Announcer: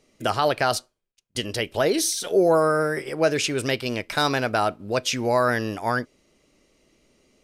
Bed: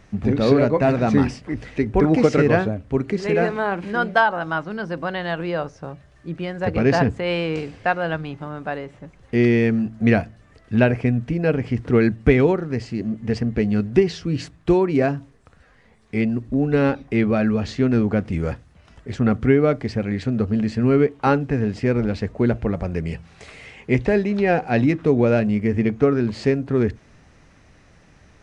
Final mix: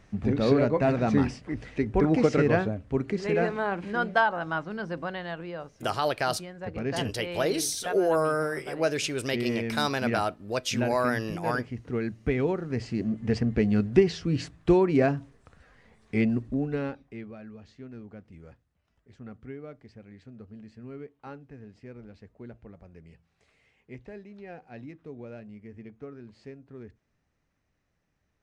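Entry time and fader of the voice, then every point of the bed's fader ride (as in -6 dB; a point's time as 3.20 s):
5.60 s, -5.5 dB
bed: 4.94 s -6 dB
5.59 s -13.5 dB
12.20 s -13.5 dB
12.88 s -3.5 dB
16.37 s -3.5 dB
17.37 s -25 dB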